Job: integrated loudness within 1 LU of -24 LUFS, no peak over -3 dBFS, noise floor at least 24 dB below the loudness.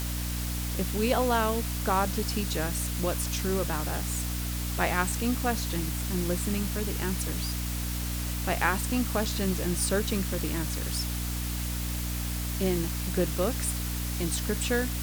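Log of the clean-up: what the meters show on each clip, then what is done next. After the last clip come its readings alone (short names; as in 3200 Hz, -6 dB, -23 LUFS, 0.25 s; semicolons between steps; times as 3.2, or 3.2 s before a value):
hum 60 Hz; harmonics up to 300 Hz; hum level -30 dBFS; noise floor -32 dBFS; noise floor target -53 dBFS; loudness -29.0 LUFS; peak -10.0 dBFS; loudness target -24.0 LUFS
-> de-hum 60 Hz, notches 5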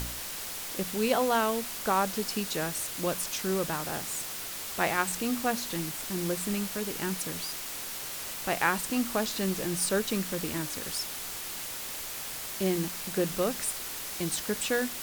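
hum none; noise floor -38 dBFS; noise floor target -55 dBFS
-> noise print and reduce 17 dB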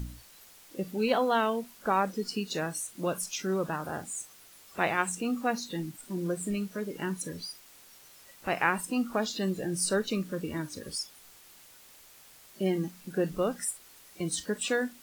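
noise floor -55 dBFS; noise floor target -56 dBFS
-> noise print and reduce 6 dB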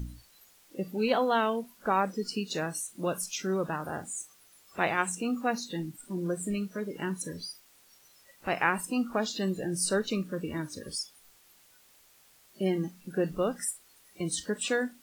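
noise floor -61 dBFS; loudness -31.5 LUFS; peak -11.0 dBFS; loudness target -24.0 LUFS
-> gain +7.5 dB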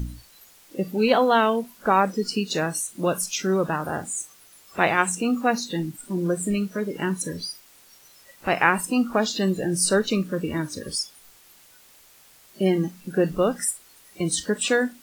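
loudness -24.0 LUFS; peak -3.5 dBFS; noise floor -53 dBFS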